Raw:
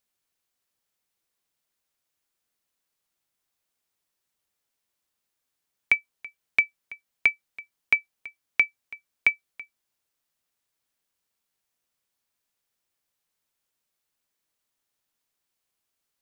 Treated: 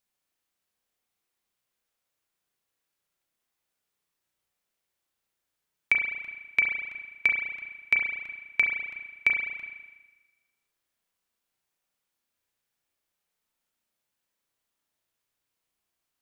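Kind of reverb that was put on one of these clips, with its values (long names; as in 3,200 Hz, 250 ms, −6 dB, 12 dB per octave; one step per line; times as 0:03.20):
spring reverb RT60 1.2 s, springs 33 ms, chirp 40 ms, DRR 0.5 dB
level −2.5 dB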